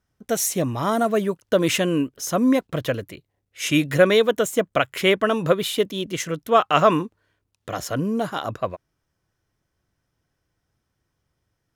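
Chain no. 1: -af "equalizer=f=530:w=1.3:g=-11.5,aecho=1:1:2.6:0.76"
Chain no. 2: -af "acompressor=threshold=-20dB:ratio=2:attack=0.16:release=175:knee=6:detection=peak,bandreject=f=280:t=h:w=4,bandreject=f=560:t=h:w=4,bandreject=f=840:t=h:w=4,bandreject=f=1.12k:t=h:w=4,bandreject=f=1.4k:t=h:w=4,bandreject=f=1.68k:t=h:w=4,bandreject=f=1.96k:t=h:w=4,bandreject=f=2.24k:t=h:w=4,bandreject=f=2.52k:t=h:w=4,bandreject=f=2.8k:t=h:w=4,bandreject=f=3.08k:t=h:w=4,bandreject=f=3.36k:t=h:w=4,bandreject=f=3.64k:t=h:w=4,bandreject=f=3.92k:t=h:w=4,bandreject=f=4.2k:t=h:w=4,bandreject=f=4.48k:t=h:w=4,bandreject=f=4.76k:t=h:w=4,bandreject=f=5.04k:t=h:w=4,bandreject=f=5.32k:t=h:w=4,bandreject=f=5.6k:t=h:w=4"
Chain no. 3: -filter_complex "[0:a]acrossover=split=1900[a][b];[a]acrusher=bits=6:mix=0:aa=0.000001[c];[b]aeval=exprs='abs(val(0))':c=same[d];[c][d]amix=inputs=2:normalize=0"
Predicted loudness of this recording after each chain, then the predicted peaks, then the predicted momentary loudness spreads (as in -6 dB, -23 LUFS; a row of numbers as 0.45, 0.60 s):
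-24.0, -26.0, -22.5 LUFS; -4.5, -11.5, -3.5 dBFS; 11, 10, 12 LU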